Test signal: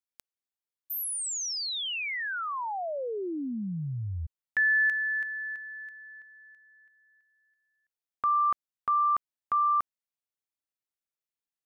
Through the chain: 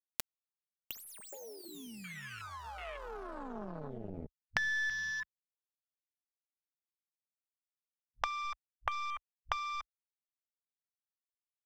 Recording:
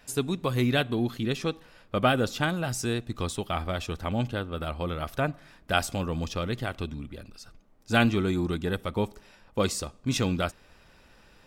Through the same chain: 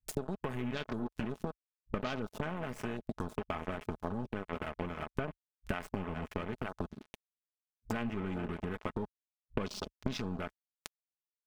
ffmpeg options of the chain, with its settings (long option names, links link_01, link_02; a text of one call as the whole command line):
ffmpeg -i in.wav -filter_complex "[0:a]aeval=exprs='if(lt(val(0),0),0.708*val(0),val(0))':channel_layout=same,asplit=2[link_01][link_02];[link_02]aecho=0:1:422|844|1266|1688|2110:0.141|0.0763|0.0412|0.0222|0.012[link_03];[link_01][link_03]amix=inputs=2:normalize=0,aeval=exprs='0.447*(cos(1*acos(clip(val(0)/0.447,-1,1)))-cos(1*PI/2))+0.0891*(cos(3*acos(clip(val(0)/0.447,-1,1)))-cos(3*PI/2))+0.0158*(cos(8*acos(clip(val(0)/0.447,-1,1)))-cos(8*PI/2))':channel_layout=same,aeval=exprs='sgn(val(0))*max(abs(val(0))-0.00944,0)':channel_layout=same,acompressor=threshold=-45dB:ratio=6:attack=0.39:release=26:knee=6:detection=peak,afwtdn=0.000891,aecho=1:1:4.7:0.37,acompressor=mode=upward:threshold=-55dB:ratio=2.5:attack=98:release=133:knee=2.83:detection=peak,volume=13dB" out.wav